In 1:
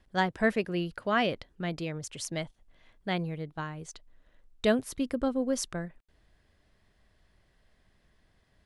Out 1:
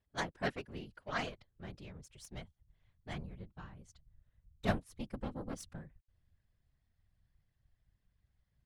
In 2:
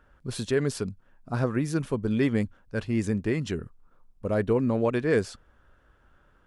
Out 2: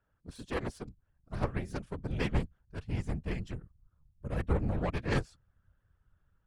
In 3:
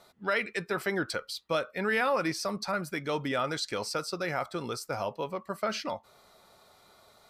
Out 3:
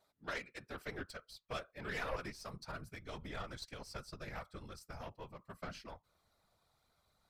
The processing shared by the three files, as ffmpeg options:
-af "aeval=exprs='0.266*(cos(1*acos(clip(val(0)/0.266,-1,1)))-cos(1*PI/2))+0.075*(cos(3*acos(clip(val(0)/0.266,-1,1)))-cos(3*PI/2))+0.00237*(cos(8*acos(clip(val(0)/0.266,-1,1)))-cos(8*PI/2))':c=same,afftfilt=real='hypot(re,im)*cos(2*PI*random(0))':imag='hypot(re,im)*sin(2*PI*random(1))':win_size=512:overlap=0.75,asubboost=boost=4:cutoff=160,volume=1.68"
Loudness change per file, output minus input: -11.0 LU, -8.0 LU, -14.5 LU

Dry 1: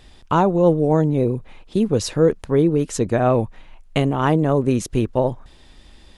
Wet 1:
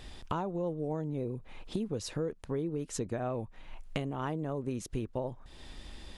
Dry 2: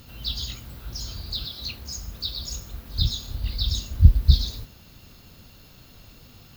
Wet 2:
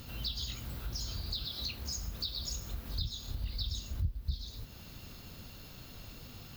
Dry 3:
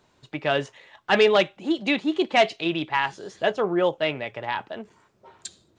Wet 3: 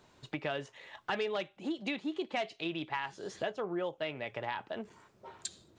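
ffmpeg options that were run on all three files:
-af "acompressor=threshold=0.0178:ratio=4"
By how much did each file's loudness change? -17.0 LU, -13.5 LU, -14.0 LU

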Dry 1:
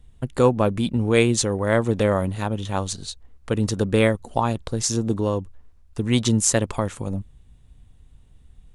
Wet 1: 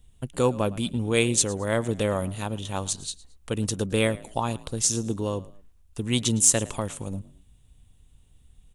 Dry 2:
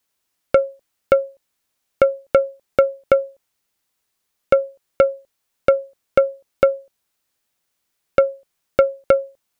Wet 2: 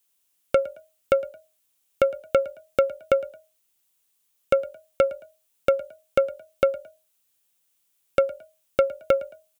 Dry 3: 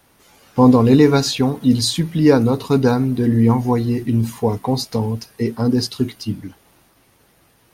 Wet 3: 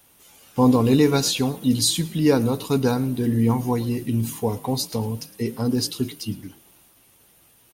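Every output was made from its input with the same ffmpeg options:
-filter_complex "[0:a]asplit=3[s0][s1][s2];[s1]adelay=110,afreqshift=43,volume=0.0944[s3];[s2]adelay=220,afreqshift=86,volume=0.0302[s4];[s0][s3][s4]amix=inputs=3:normalize=0,aexciter=amount=2.4:drive=2.3:freq=2600,volume=0.531"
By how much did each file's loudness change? -3.5 LU, -5.5 LU, -5.0 LU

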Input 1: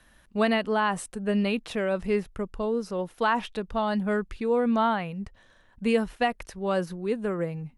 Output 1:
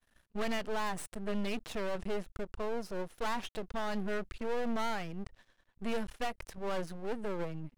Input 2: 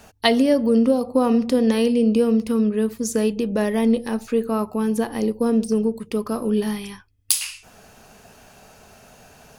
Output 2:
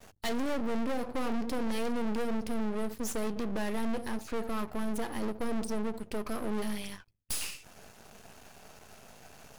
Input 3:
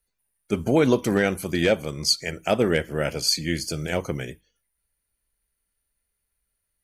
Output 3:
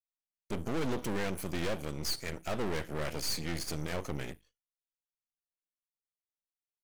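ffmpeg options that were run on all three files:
-af "aeval=exprs='(tanh(12.6*val(0)+0.3)-tanh(0.3))/12.6':c=same,agate=range=0.0224:threshold=0.00251:ratio=3:detection=peak,aeval=exprs='max(val(0),0)':c=same"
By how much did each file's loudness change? -10.5 LU, -14.0 LU, -12.5 LU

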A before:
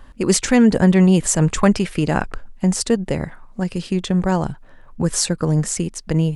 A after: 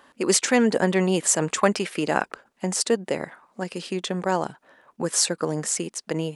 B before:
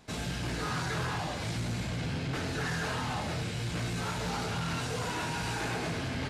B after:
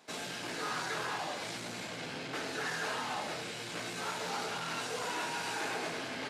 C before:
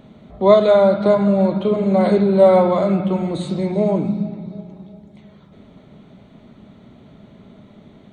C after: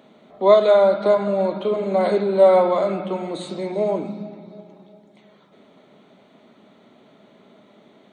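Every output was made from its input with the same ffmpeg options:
-af "highpass=340,volume=0.891"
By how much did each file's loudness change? -5.5 LU, -3.5 LU, -2.5 LU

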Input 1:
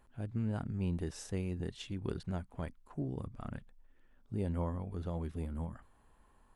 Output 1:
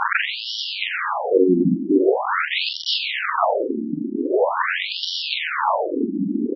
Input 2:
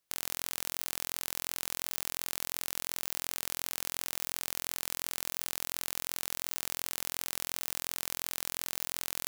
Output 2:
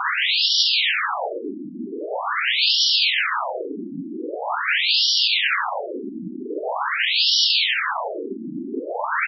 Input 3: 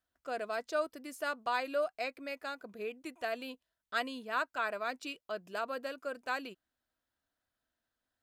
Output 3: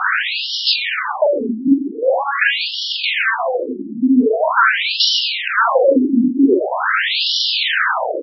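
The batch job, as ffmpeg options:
-af "aeval=exprs='val(0)+0.5*0.0794*sgn(val(0))':c=same,bandreject=f=50:t=h:w=6,bandreject=f=100:t=h:w=6,bandreject=f=150:t=h:w=6,bandreject=f=200:t=h:w=6,aeval=exprs='0.473*sin(PI/2*3.16*val(0)/0.473)':c=same,aecho=1:1:43.73|137:0.708|0.316,alimiter=level_in=2.11:limit=0.891:release=50:level=0:latency=1,afftfilt=real='re*between(b*sr/1024,240*pow(4100/240,0.5+0.5*sin(2*PI*0.44*pts/sr))/1.41,240*pow(4100/240,0.5+0.5*sin(2*PI*0.44*pts/sr))*1.41)':imag='im*between(b*sr/1024,240*pow(4100/240,0.5+0.5*sin(2*PI*0.44*pts/sr))/1.41,240*pow(4100/240,0.5+0.5*sin(2*PI*0.44*pts/sr))*1.41)':win_size=1024:overlap=0.75,volume=0.841"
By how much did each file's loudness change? +18.5 LU, +15.5 LU, +22.0 LU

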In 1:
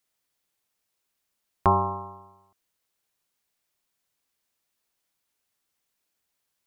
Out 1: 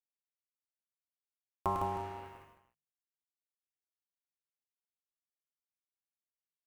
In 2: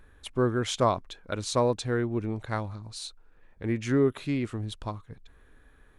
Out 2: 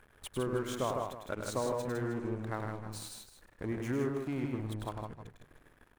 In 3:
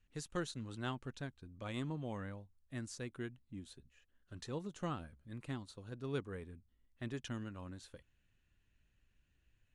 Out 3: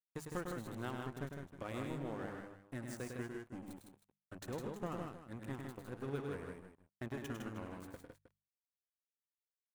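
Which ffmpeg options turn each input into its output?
-filter_complex "[0:a]acompressor=threshold=0.00398:ratio=2.5,lowshelf=f=230:g=-3.5,asplit=2[s0][s1];[s1]aecho=0:1:301|602|903:0.1|0.04|0.016[s2];[s0][s2]amix=inputs=2:normalize=0,aeval=exprs='sgn(val(0))*max(abs(val(0))-0.00188,0)':c=same,bandreject=f=50:t=h:w=6,bandreject=f=100:t=h:w=6,bandreject=f=150:t=h:w=6,bandreject=f=200:t=h:w=6,asoftclip=type=tanh:threshold=0.0398,equalizer=f=4300:w=0.78:g=-10,asplit=2[s3][s4];[s4]aecho=0:1:102|130|158|186|314:0.531|0.112|0.596|0.112|0.2[s5];[s3][s5]amix=inputs=2:normalize=0,volume=3.35"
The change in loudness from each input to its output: -12.0 LU, -7.5 LU, -0.5 LU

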